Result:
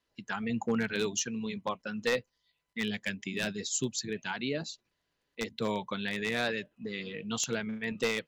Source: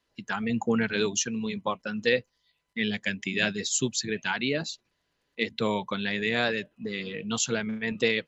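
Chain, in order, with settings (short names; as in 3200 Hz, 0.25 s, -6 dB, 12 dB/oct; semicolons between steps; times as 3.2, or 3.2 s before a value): one-sided fold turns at -16.5 dBFS; 3.1–5.65 dynamic EQ 2100 Hz, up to -4 dB, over -42 dBFS, Q 0.84; gain -4.5 dB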